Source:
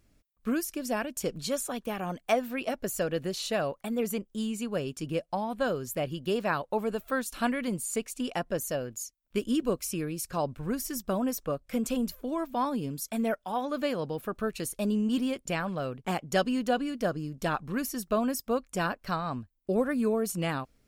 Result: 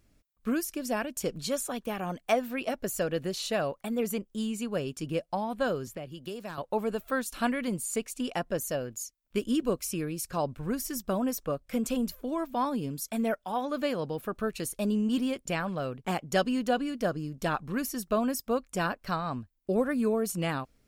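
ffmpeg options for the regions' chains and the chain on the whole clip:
ffmpeg -i in.wav -filter_complex "[0:a]asettb=1/sr,asplit=3[link_01][link_02][link_03];[link_01]atrim=end=5.874[link_04];[link_02]atrim=start=5.87:end=6.58,asetpts=PTS-STARTPTS,afade=type=in:duration=0.004:curve=qsin,afade=type=out:start_time=0.706:duration=0.004:curve=qsin,aeval=exprs='clip(val(0),-1,0.0794)':channel_layout=same,acrossover=split=260|5100[link_05][link_06][link_07];[link_05]acompressor=threshold=-46dB:ratio=4[link_08];[link_06]acompressor=threshold=-40dB:ratio=4[link_09];[link_07]acompressor=threshold=-53dB:ratio=4[link_10];[link_08][link_09][link_10]amix=inputs=3:normalize=0[link_11];[link_03]atrim=start=6.576[link_12];[link_04][link_11]acrossfade=duration=0.004:curve1=hsin:curve2=qsin[link_13];[link_13][link_12]acrossfade=duration=0.004:curve1=qsin:curve2=hsin" out.wav

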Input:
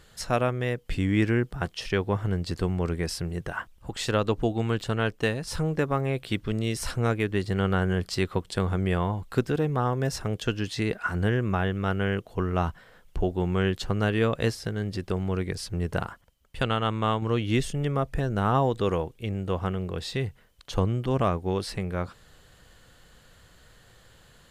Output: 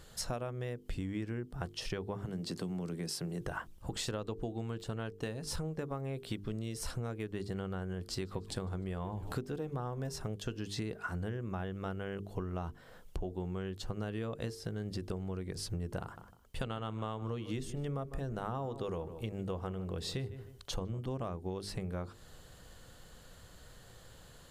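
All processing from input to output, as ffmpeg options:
ffmpeg -i in.wav -filter_complex "[0:a]asettb=1/sr,asplit=3[link_01][link_02][link_03];[link_01]atrim=end=2.254[link_04];[link_02]atrim=start=2.25:end=3.41,asetpts=PTS-STARTPTS,afade=type=in:duration=0.004:curve=qsin,afade=type=out:start_time=1.156:duration=0.004:curve=qsin,highpass=frequency=150:width=0.5412,highpass=frequency=150:width=1.3066,acrossover=split=270|3000[link_05][link_06][link_07];[link_06]acompressor=threshold=-37dB:ratio=6:attack=3.2:release=140:knee=2.83:detection=peak[link_08];[link_05][link_08][link_07]amix=inputs=3:normalize=0[link_09];[link_03]atrim=start=3.406[link_10];[link_04][link_09]acrossfade=duration=0.004:curve1=hsin:curve2=qsin[link_11];[link_11][link_10]acrossfade=duration=0.004:curve1=qsin:curve2=hsin,asettb=1/sr,asplit=3[link_12][link_13][link_14];[link_12]atrim=end=7.944[link_15];[link_13]atrim=start=7.94:end=10.12,asetpts=PTS-STARTPTS,afade=type=in:duration=0.004:curve=qsin,afade=type=out:start_time=2.176:duration=0.004:curve=qsin,asplit=6[link_16][link_17][link_18][link_19][link_20][link_21];[link_17]adelay=150,afreqshift=-130,volume=-23dB[link_22];[link_18]adelay=300,afreqshift=-260,volume=-27.2dB[link_23];[link_19]adelay=450,afreqshift=-390,volume=-31.3dB[link_24];[link_20]adelay=600,afreqshift=-520,volume=-35.5dB[link_25];[link_21]adelay=750,afreqshift=-650,volume=-39.6dB[link_26];[link_16][link_22][link_23][link_24][link_25][link_26]amix=inputs=6:normalize=0,atrim=end_sample=96138,acompressor=mode=upward:threshold=-29dB:ratio=2.5:attack=3.2:release=140:knee=2.83:detection=peak[link_27];[link_14]atrim=start=10.116[link_28];[link_15][link_27]acrossfade=duration=0.004:curve1=hsin:curve2=qsin[link_29];[link_29][link_28]acrossfade=duration=0.004:curve1=qsin:curve2=hsin,asettb=1/sr,asplit=3[link_30][link_31][link_32];[link_30]atrim=end=16.024[link_33];[link_31]atrim=start=16.02:end=20.99,asetpts=PTS-STARTPTS,afade=type=in:duration=0.004:curve=qsin,afade=type=out:start_time=4.966:duration=0.004:curve=qsin,bandreject=frequency=50:width_type=h:width=6,bandreject=frequency=100:width_type=h:width=6,bandreject=frequency=150:width_type=h:width=6,bandreject=frequency=200:width_type=h:width=6,bandreject=frequency=250:width_type=h:width=6,bandreject=frequency=300:width_type=h:width=6,bandreject=frequency=350:width_type=h:width=6,asplit=2[link_34][link_35];[link_35]adelay=153,lowpass=frequency=2100:poles=1,volume=-15.5dB,asplit=2[link_36][link_37];[link_37]adelay=153,lowpass=frequency=2100:poles=1,volume=0.24[link_38];[link_34][link_36][link_38]amix=inputs=3:normalize=0,atrim=end_sample=219177[link_39];[link_32]atrim=start=20.986[link_40];[link_33][link_39]acrossfade=duration=0.004:curve1=hsin:curve2=qsin[link_41];[link_41][link_40]acrossfade=duration=0.004:curve1=qsin:curve2=hsin,equalizer=frequency=2100:width=0.83:gain=-6,bandreject=frequency=50:width_type=h:width=6,bandreject=frequency=100:width_type=h:width=6,bandreject=frequency=150:width_type=h:width=6,bandreject=frequency=200:width_type=h:width=6,bandreject=frequency=250:width_type=h:width=6,bandreject=frequency=300:width_type=h:width=6,bandreject=frequency=350:width_type=h:width=6,bandreject=frequency=400:width_type=h:width=6,bandreject=frequency=450:width_type=h:width=6,acompressor=threshold=-36dB:ratio=10,volume=1.5dB" out.wav

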